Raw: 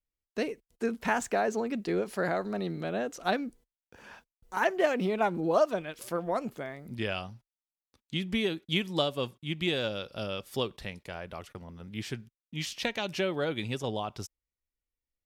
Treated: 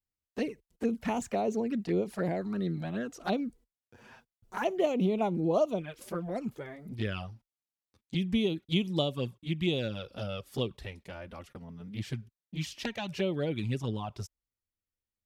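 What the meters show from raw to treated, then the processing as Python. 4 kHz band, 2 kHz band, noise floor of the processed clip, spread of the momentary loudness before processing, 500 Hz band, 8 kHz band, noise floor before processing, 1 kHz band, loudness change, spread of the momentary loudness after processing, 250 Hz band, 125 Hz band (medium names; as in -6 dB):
-3.5 dB, -7.0 dB, under -85 dBFS, 14 LU, -2.0 dB, -5.0 dB, under -85 dBFS, -5.0 dB, -1.0 dB, 15 LU, +2.0 dB, +3.5 dB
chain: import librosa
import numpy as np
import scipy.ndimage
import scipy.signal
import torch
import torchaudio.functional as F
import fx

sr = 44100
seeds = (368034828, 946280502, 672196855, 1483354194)

y = fx.highpass(x, sr, hz=82.0, slope=6)
y = fx.low_shelf(y, sr, hz=230.0, db=11.5)
y = fx.env_flanger(y, sr, rest_ms=10.1, full_db=-22.5)
y = F.gain(torch.from_numpy(y), -2.0).numpy()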